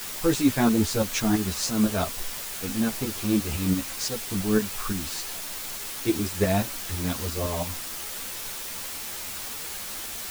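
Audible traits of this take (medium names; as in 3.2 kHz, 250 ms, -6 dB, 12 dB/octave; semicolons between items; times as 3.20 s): tremolo saw up 5.9 Hz, depth 65%; a quantiser's noise floor 6-bit, dither triangular; a shimmering, thickened sound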